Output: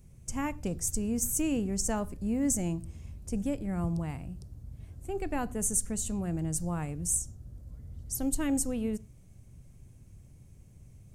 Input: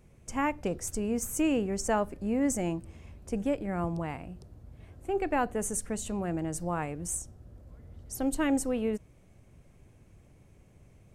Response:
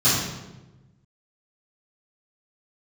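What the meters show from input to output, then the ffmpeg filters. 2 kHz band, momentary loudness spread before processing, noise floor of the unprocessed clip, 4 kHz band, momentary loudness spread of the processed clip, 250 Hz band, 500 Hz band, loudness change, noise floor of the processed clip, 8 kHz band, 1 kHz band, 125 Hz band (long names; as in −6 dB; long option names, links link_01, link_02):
−6.0 dB, 15 LU, −59 dBFS, −0.5 dB, 17 LU, −0.5 dB, −6.0 dB, 0.0 dB, −55 dBFS, +5.0 dB, −7.0 dB, +3.0 dB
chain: -filter_complex "[0:a]bass=frequency=250:gain=12,treble=frequency=4000:gain=13,asplit=2[link_01][link_02];[1:a]atrim=start_sample=2205,afade=type=out:start_time=0.18:duration=0.01,atrim=end_sample=8379[link_03];[link_02][link_03]afir=irnorm=-1:irlink=0,volume=-39dB[link_04];[link_01][link_04]amix=inputs=2:normalize=0,volume=-7dB"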